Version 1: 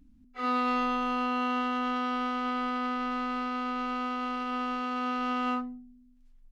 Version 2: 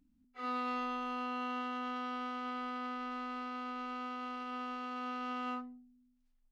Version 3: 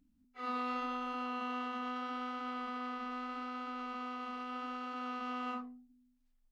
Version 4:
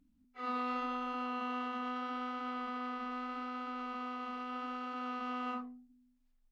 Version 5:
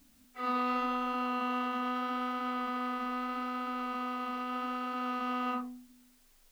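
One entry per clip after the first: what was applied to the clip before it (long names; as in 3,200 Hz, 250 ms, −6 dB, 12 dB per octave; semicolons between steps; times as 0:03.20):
low-shelf EQ 110 Hz −9.5 dB; level −8.5 dB
flanger 0.79 Hz, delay 0.3 ms, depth 7.9 ms, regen −79%; level +4 dB
high-shelf EQ 4,900 Hz −5.5 dB; level +1 dB
background noise white −72 dBFS; level +5 dB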